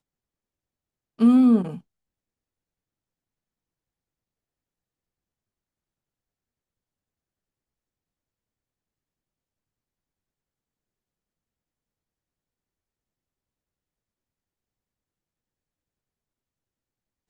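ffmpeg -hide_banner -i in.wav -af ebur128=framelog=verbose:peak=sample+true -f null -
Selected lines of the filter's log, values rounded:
Integrated loudness:
  I:         -18.4 LUFS
  Threshold: -30.3 LUFS
Loudness range:
  LRA:         7.2 LU
  Threshold: -45.7 LUFS
  LRA low:   -31.9 LUFS
  LRA high:  -24.7 LUFS
Sample peak:
  Peak:       -8.6 dBFS
True peak:
  Peak:       -8.6 dBFS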